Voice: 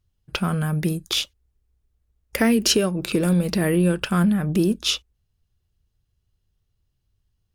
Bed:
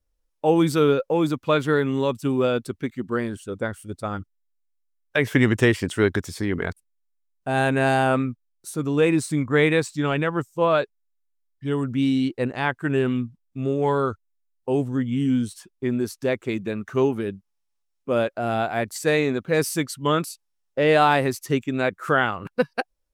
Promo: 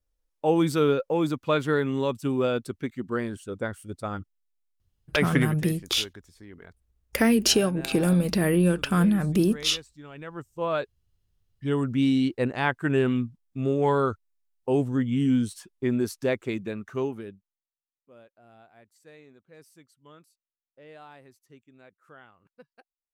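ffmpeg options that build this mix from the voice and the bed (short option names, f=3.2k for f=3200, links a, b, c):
-filter_complex "[0:a]adelay=4800,volume=-2dB[a];[1:a]volume=17dB,afade=t=out:st=5.35:d=0.21:silence=0.125893,afade=t=in:st=10.12:d=1.43:silence=0.0944061,afade=t=out:st=16.11:d=1.57:silence=0.0334965[b];[a][b]amix=inputs=2:normalize=0"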